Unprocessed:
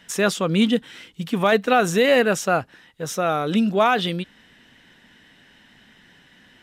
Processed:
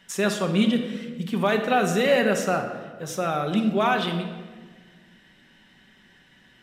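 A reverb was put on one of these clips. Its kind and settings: shoebox room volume 1300 m³, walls mixed, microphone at 1.1 m; gain -5 dB

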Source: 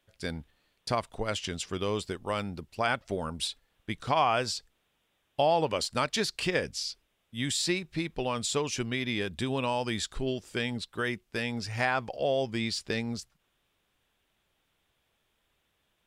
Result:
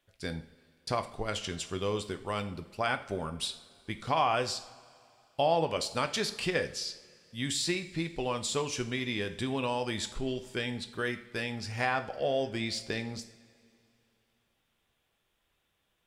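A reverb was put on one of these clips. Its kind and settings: two-slope reverb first 0.46 s, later 2.6 s, from -18 dB, DRR 7.5 dB; gain -2.5 dB

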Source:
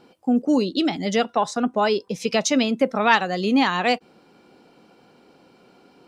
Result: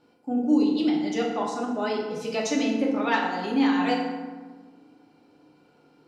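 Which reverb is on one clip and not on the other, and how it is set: FDN reverb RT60 1.4 s, low-frequency decay 1.45×, high-frequency decay 0.55×, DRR -3 dB; gain -11.5 dB

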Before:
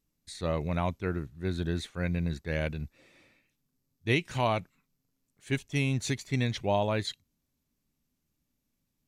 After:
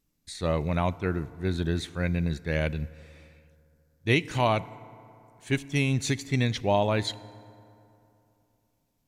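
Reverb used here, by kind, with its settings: FDN reverb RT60 2.9 s, high-frequency decay 0.5×, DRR 18 dB; gain +3.5 dB

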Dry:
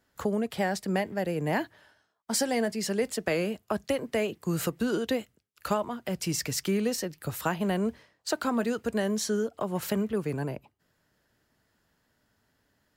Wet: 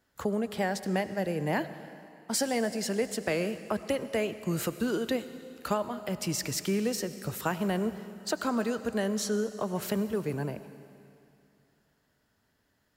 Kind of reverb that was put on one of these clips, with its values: digital reverb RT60 2.6 s, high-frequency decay 1×, pre-delay 50 ms, DRR 12.5 dB; gain -1.5 dB

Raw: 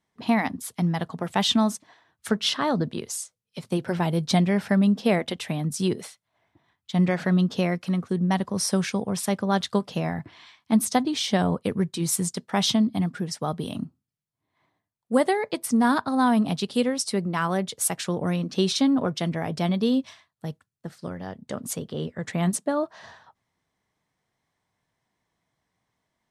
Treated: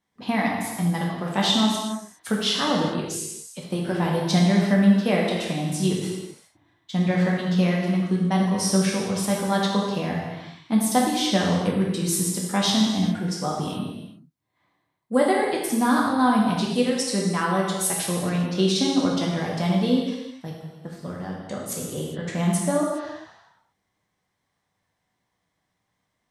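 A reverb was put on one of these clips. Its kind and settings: non-linear reverb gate 0.44 s falling, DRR -3 dB; gain -2.5 dB

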